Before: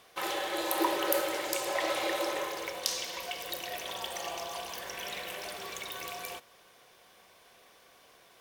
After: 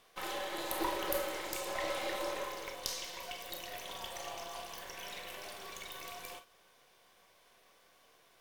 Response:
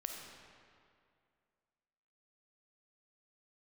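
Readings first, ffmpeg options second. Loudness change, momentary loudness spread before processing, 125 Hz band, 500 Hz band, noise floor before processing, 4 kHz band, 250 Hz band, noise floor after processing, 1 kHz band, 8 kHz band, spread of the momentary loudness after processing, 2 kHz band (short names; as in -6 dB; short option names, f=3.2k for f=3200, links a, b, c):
-6.0 dB, 10 LU, -1.0 dB, -6.0 dB, -60 dBFS, -6.0 dB, -7.0 dB, -66 dBFS, -5.5 dB, -6.0 dB, 10 LU, -6.0 dB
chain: -filter_complex "[0:a]aeval=exprs='if(lt(val(0),0),0.447*val(0),val(0))':c=same[a];[1:a]atrim=start_sample=2205,atrim=end_sample=3969,asetrate=70560,aresample=44100[b];[a][b]afir=irnorm=-1:irlink=0,volume=3dB"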